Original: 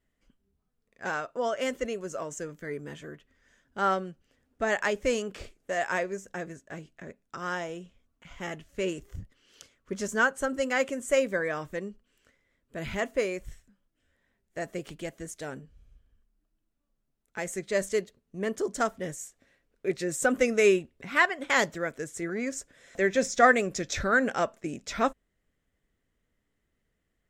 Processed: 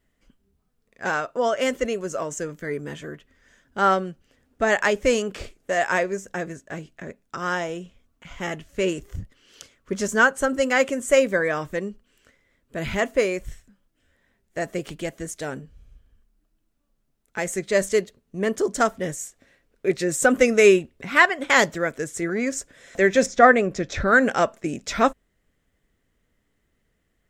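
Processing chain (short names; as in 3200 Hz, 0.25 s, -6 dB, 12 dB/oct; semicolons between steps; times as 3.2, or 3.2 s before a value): 23.26–24.08 LPF 1800 Hz 6 dB/oct; gain +7 dB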